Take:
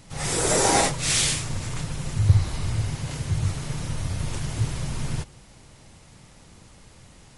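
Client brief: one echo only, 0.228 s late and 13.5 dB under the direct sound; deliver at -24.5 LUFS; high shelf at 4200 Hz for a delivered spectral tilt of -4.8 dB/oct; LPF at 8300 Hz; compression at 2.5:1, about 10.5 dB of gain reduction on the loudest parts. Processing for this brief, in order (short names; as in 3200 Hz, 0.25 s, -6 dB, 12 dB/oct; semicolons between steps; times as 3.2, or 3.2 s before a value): LPF 8300 Hz; high shelf 4200 Hz -8.5 dB; compressor 2.5:1, threshold -27 dBFS; echo 0.228 s -13.5 dB; gain +6.5 dB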